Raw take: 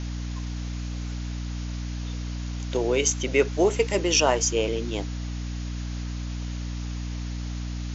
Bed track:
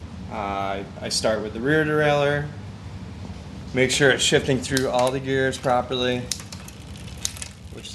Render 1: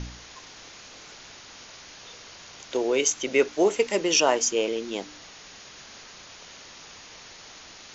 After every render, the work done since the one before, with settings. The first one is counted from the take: de-hum 60 Hz, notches 5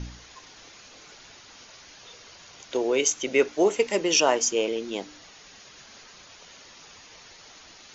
noise reduction 6 dB, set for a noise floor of -47 dBFS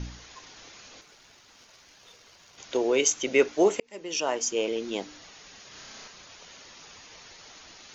1.01–2.58 s: companding laws mixed up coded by A; 3.80–4.87 s: fade in; 5.68–6.08 s: flutter echo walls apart 5.5 m, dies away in 0.72 s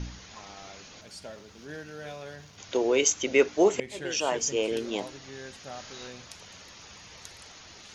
add bed track -21.5 dB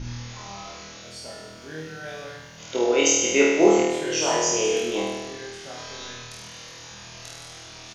doubling 19 ms -10.5 dB; flutter echo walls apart 4.3 m, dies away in 1.2 s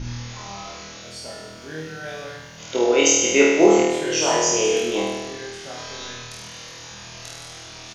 trim +3 dB; peak limiter -3 dBFS, peak gain reduction 1.5 dB

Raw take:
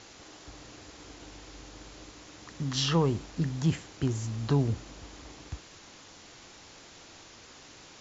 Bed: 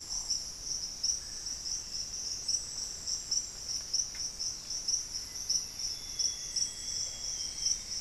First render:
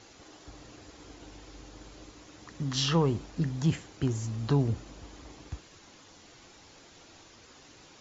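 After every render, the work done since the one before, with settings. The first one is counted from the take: noise reduction 6 dB, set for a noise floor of -52 dBFS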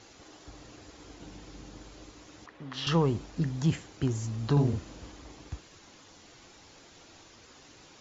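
1.20–1.81 s: peaking EQ 180 Hz +9.5 dB 0.83 oct; 2.46–2.87 s: three-band isolator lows -14 dB, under 340 Hz, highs -20 dB, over 3.4 kHz; 4.52–5.12 s: doubling 48 ms -4 dB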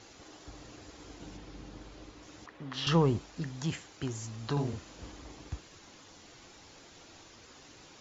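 1.37–2.23 s: distance through air 75 m; 3.19–4.99 s: bass shelf 470 Hz -9 dB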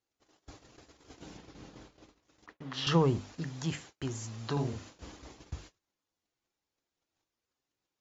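hum notches 50/100/150/200/250/300 Hz; gate -49 dBFS, range -35 dB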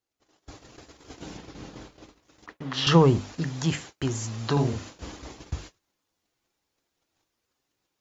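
level rider gain up to 8.5 dB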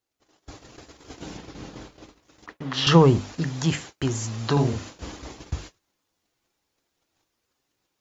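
trim +2.5 dB

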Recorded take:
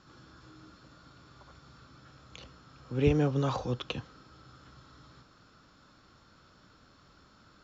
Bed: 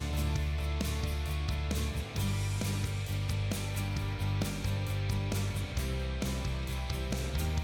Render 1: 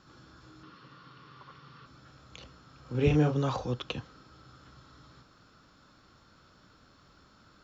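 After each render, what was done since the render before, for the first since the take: 0.63–1.86 s: cabinet simulation 130–5600 Hz, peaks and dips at 140 Hz +8 dB, 460 Hz +5 dB, 660 Hz -8 dB, 1.1 kHz +9 dB, 1.9 kHz +6 dB, 2.9 kHz +8 dB; 2.83–3.36 s: doubling 33 ms -4 dB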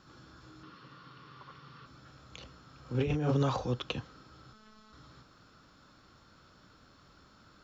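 3.00–3.43 s: compressor with a negative ratio -29 dBFS; 4.53–4.93 s: robot voice 216 Hz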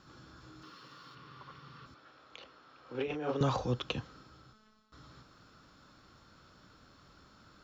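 0.62–1.15 s: tone controls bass -7 dB, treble +9 dB; 1.94–3.41 s: three-band isolator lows -20 dB, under 300 Hz, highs -15 dB, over 4.6 kHz; 4.16–4.92 s: fade out, to -16.5 dB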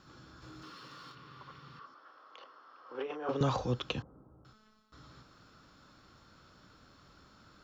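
0.42–1.12 s: waveshaping leveller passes 1; 1.79–3.29 s: cabinet simulation 400–5400 Hz, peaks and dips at 1.1 kHz +8 dB, 2.4 kHz -9 dB, 3.9 kHz -9 dB; 4.02–4.45 s: inverse Chebyshev low-pass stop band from 5.1 kHz, stop band 80 dB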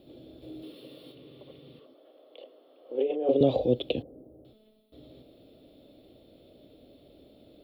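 FFT filter 190 Hz 0 dB, 260 Hz +10 dB, 640 Hz +13 dB, 1 kHz -17 dB, 1.5 kHz -22 dB, 2.2 kHz -4 dB, 3.6 kHz +5 dB, 6.3 kHz -27 dB, 9.6 kHz +11 dB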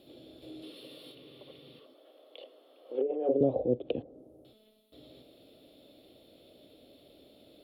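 low-pass that closes with the level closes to 610 Hz, closed at -23 dBFS; tilt EQ +2 dB/octave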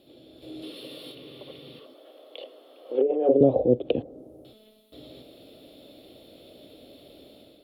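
level rider gain up to 8 dB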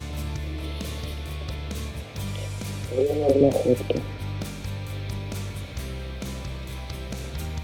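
add bed +0.5 dB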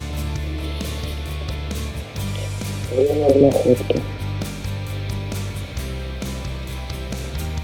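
trim +5.5 dB; peak limiter -2 dBFS, peak gain reduction 1 dB

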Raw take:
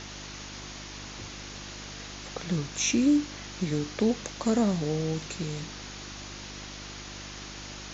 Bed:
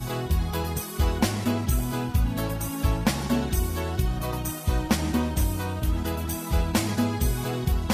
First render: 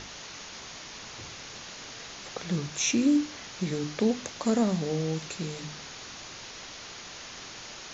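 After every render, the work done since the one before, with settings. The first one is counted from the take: de-hum 50 Hz, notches 7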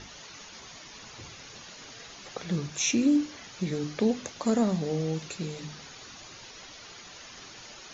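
noise reduction 8 dB, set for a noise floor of -44 dBFS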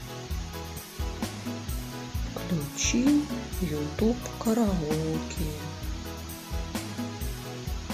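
add bed -9.5 dB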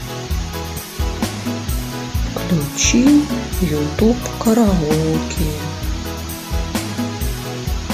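trim +12 dB; peak limiter -3 dBFS, peak gain reduction 2 dB

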